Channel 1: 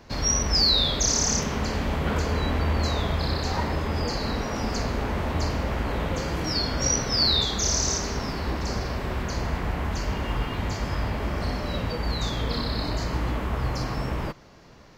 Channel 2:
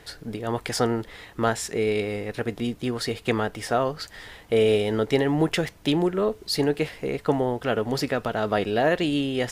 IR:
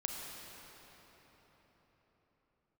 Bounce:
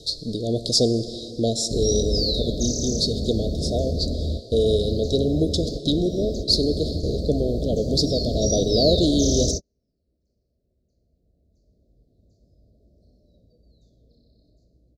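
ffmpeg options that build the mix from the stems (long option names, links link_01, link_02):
-filter_complex "[0:a]tiltshelf=frequency=1400:gain=3.5,adelay=1600,volume=2dB[link_01];[1:a]lowpass=5500,highshelf=frequency=2300:width_type=q:width=3:gain=8,volume=2.5dB,asplit=3[link_02][link_03][link_04];[link_03]volume=-6.5dB[link_05];[link_04]apad=whole_len=730793[link_06];[link_01][link_06]sidechaingate=range=-50dB:threshold=-34dB:ratio=16:detection=peak[link_07];[2:a]atrim=start_sample=2205[link_08];[link_05][link_08]afir=irnorm=-1:irlink=0[link_09];[link_07][link_02][link_09]amix=inputs=3:normalize=0,dynaudnorm=framelen=250:gausssize=17:maxgain=15.5dB,asuperstop=centerf=1600:order=20:qfactor=0.51"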